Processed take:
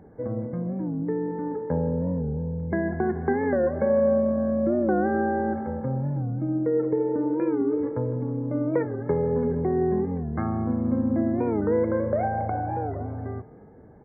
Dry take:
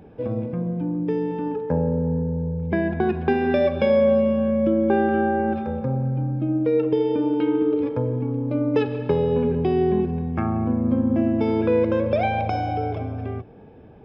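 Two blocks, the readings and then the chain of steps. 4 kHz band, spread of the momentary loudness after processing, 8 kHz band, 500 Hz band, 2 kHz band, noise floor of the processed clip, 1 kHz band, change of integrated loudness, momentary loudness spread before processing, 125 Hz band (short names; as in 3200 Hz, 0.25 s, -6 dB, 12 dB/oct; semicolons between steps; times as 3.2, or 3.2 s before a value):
under -40 dB, 7 LU, n/a, -3.5 dB, -4.5 dB, -48 dBFS, -3.5 dB, -3.5 dB, 7 LU, -3.5 dB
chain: brick-wall FIR low-pass 2200 Hz; frequency-shifting echo 0.157 s, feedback 52%, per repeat +43 Hz, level -20 dB; record warp 45 rpm, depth 160 cents; gain -3.5 dB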